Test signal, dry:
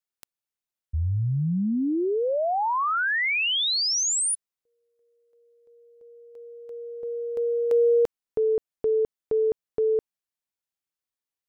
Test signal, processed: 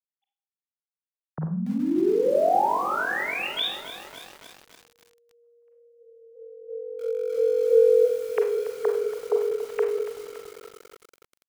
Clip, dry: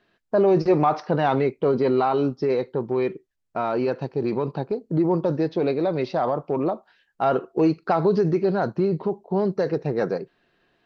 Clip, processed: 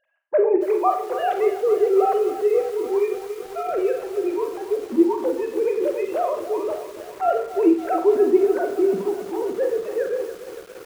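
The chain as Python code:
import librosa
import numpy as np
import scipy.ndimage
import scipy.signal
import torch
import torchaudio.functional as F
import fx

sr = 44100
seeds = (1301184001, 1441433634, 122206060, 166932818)

y = fx.sine_speech(x, sr)
y = fx.rev_schroeder(y, sr, rt60_s=0.44, comb_ms=33, drr_db=4.5)
y = fx.echo_crushed(y, sr, ms=283, feedback_pct=80, bits=6, wet_db=-12.5)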